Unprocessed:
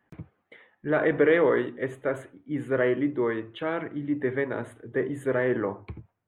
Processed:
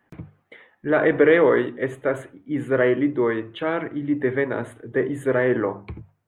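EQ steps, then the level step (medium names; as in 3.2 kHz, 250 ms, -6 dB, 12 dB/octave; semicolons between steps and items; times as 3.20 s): hum notches 50/100/150/200 Hz; +5.0 dB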